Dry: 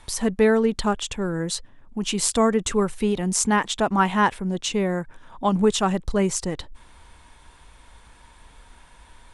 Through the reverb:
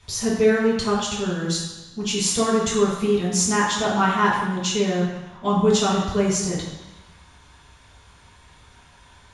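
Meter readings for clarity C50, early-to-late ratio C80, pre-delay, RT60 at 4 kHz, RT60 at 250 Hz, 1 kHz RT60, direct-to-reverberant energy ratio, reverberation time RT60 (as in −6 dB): 2.0 dB, 4.0 dB, 3 ms, 1.1 s, 1.1 s, 1.2 s, −6.5 dB, 1.1 s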